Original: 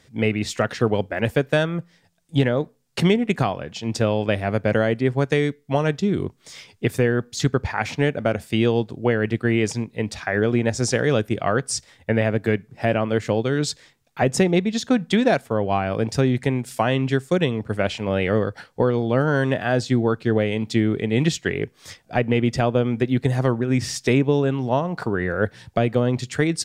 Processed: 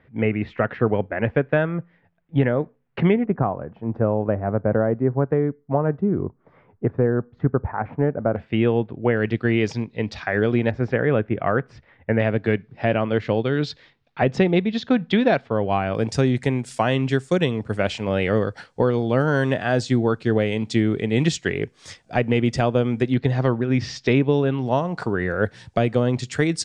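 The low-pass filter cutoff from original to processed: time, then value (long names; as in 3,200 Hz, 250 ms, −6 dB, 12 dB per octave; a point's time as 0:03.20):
low-pass filter 24 dB per octave
2,300 Hz
from 0:03.25 1,300 Hz
from 0:08.36 2,600 Hz
from 0:09.17 4,900 Hz
from 0:10.71 2,300 Hz
from 0:12.20 4,100 Hz
from 0:15.95 9,100 Hz
from 0:23.14 4,900 Hz
from 0:24.66 8,900 Hz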